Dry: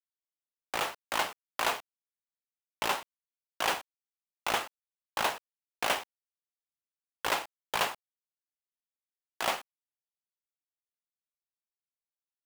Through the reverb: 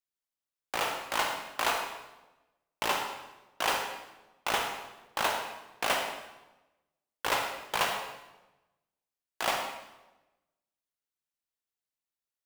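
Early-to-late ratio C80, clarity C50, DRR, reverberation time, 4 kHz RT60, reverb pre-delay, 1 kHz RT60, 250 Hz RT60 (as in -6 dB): 6.5 dB, 4.5 dB, 3.0 dB, 1.1 s, 0.85 s, 37 ms, 1.0 s, 1.2 s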